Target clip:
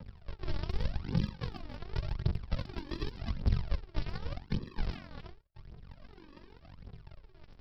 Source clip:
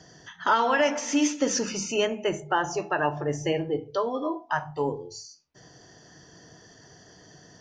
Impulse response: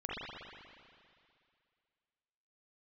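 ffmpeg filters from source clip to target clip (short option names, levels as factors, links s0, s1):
-filter_complex "[0:a]aeval=exprs='val(0)*sin(2*PI*230*n/s)':c=same,aemphasis=mode=production:type=riaa,acompressor=threshold=0.0282:ratio=2.5,tremolo=f=46:d=0.824,aresample=11025,acrusher=samples=30:mix=1:aa=0.000001:lfo=1:lforange=30:lforate=0.59,aresample=44100,aphaser=in_gain=1:out_gain=1:delay=3.6:decay=0.64:speed=0.87:type=triangular,acrossover=split=230|3000[s0][s1][s2];[s1]acompressor=threshold=0.00562:ratio=6[s3];[s0][s3][s2]amix=inputs=3:normalize=0,volume=1.41"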